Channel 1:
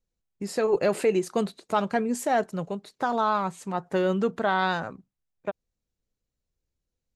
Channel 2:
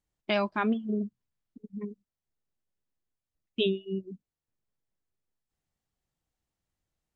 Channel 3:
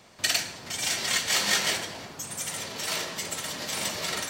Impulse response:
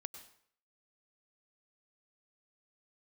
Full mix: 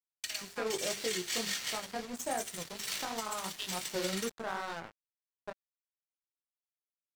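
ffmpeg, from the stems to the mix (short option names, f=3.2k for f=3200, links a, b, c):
-filter_complex "[0:a]bandreject=f=50:t=h:w=6,bandreject=f=100:t=h:w=6,bandreject=f=150:t=h:w=6,bandreject=f=200:t=h:w=6,bandreject=f=250:t=h:w=6,bandreject=f=300:t=h:w=6,bandreject=f=350:t=h:w=6,bandreject=f=400:t=h:w=6,alimiter=limit=-16.5dB:level=0:latency=1:release=189,flanger=delay=17.5:depth=5.2:speed=2.8,volume=-5dB,asplit=2[a][b];[b]volume=-9.5dB[c];[1:a]volume=-2dB[d];[2:a]volume=-3.5dB,asplit=2[e][f];[f]volume=-5dB[g];[d][e]amix=inputs=2:normalize=0,highpass=1.4k,acompressor=threshold=-36dB:ratio=1.5,volume=0dB[h];[3:a]atrim=start_sample=2205[i];[c][g]amix=inputs=2:normalize=0[j];[j][i]afir=irnorm=-1:irlink=0[k];[a][h][k]amix=inputs=3:normalize=0,aeval=exprs='sgn(val(0))*max(abs(val(0))-0.0112,0)':c=same,alimiter=limit=-22.5dB:level=0:latency=1:release=487"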